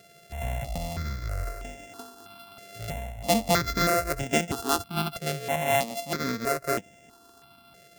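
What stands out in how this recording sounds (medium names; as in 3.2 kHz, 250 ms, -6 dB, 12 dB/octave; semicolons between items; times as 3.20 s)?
a buzz of ramps at a fixed pitch in blocks of 64 samples; notches that jump at a steady rate 3.1 Hz 260–4300 Hz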